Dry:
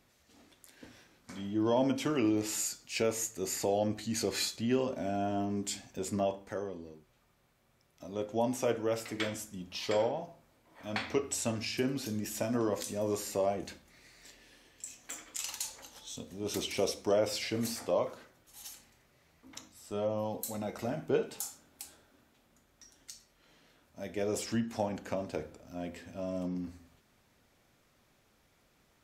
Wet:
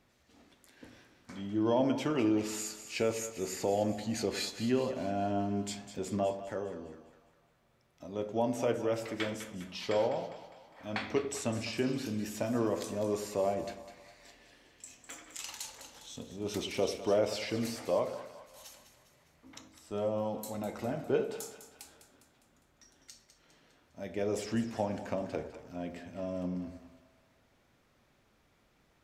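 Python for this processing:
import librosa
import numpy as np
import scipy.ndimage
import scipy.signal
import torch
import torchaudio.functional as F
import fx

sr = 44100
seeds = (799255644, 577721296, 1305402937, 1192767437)

p1 = fx.high_shelf(x, sr, hz=5700.0, db=-8.5)
y = p1 + fx.echo_split(p1, sr, split_hz=720.0, low_ms=98, high_ms=203, feedback_pct=52, wet_db=-11, dry=0)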